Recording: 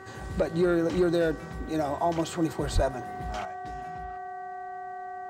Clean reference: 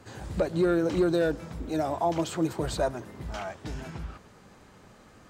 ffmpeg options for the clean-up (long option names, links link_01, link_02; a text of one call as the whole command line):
ffmpeg -i in.wav -filter_complex "[0:a]bandreject=frequency=382:width_type=h:width=4,bandreject=frequency=764:width_type=h:width=4,bandreject=frequency=1146:width_type=h:width=4,bandreject=frequency=1528:width_type=h:width=4,bandreject=frequency=1910:width_type=h:width=4,bandreject=frequency=730:width=30,asplit=3[link_01][link_02][link_03];[link_01]afade=type=out:start_time=2.74:duration=0.02[link_04];[link_02]highpass=frequency=140:width=0.5412,highpass=frequency=140:width=1.3066,afade=type=in:start_time=2.74:duration=0.02,afade=type=out:start_time=2.86:duration=0.02[link_05];[link_03]afade=type=in:start_time=2.86:duration=0.02[link_06];[link_04][link_05][link_06]amix=inputs=3:normalize=0,asetnsamples=nb_out_samples=441:pad=0,asendcmd='3.45 volume volume 8.5dB',volume=0dB" out.wav